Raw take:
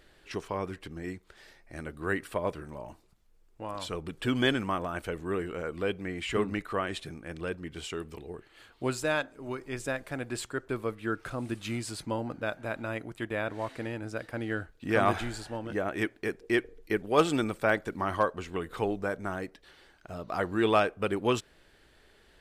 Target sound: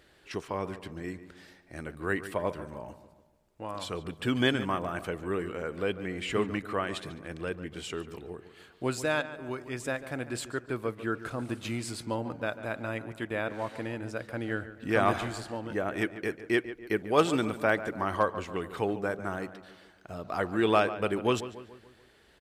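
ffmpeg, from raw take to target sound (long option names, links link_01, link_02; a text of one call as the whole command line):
ffmpeg -i in.wav -filter_complex "[0:a]highpass=57,asplit=2[link_01][link_02];[link_02]adelay=144,lowpass=frequency=2700:poles=1,volume=-13dB,asplit=2[link_03][link_04];[link_04]adelay=144,lowpass=frequency=2700:poles=1,volume=0.5,asplit=2[link_05][link_06];[link_06]adelay=144,lowpass=frequency=2700:poles=1,volume=0.5,asplit=2[link_07][link_08];[link_08]adelay=144,lowpass=frequency=2700:poles=1,volume=0.5,asplit=2[link_09][link_10];[link_10]adelay=144,lowpass=frequency=2700:poles=1,volume=0.5[link_11];[link_01][link_03][link_05][link_07][link_09][link_11]amix=inputs=6:normalize=0" out.wav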